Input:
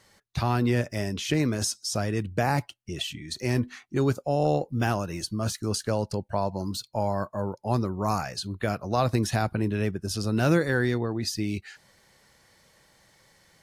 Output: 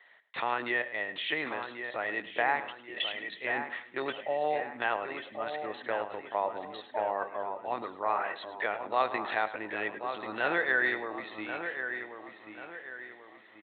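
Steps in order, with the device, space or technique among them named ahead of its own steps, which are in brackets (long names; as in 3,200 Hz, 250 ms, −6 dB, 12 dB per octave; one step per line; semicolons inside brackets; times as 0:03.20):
0:07.44–0:08.65: mains-hum notches 50/100/150/200/250/300 Hz
talking toy (linear-prediction vocoder at 8 kHz pitch kept; high-pass filter 640 Hz 12 dB per octave; parametric band 1,900 Hz +10 dB 0.21 octaves)
repeating echo 105 ms, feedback 27%, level −15 dB
delay with a low-pass on its return 1,086 ms, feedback 39%, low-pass 2,800 Hz, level −8 dB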